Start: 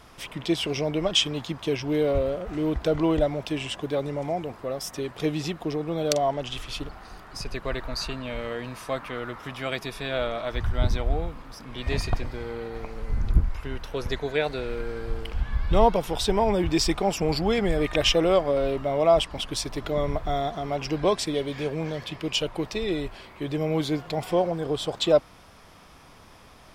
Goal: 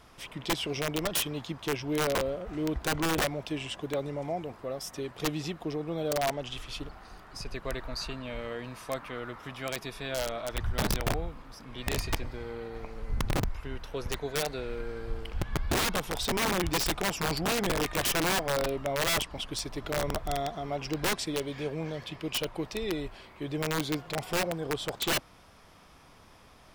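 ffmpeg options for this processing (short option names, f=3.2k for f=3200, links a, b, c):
-af "aeval=exprs='(mod(7.08*val(0)+1,2)-1)/7.08':c=same,volume=-5dB"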